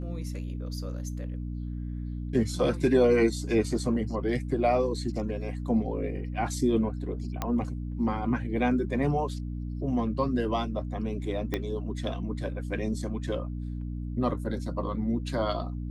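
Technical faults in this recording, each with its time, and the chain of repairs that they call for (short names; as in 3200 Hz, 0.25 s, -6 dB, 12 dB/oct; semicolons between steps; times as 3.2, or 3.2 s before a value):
hum 60 Hz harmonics 5 -34 dBFS
7.42 pop -15 dBFS
11.54 pop -15 dBFS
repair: de-click; de-hum 60 Hz, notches 5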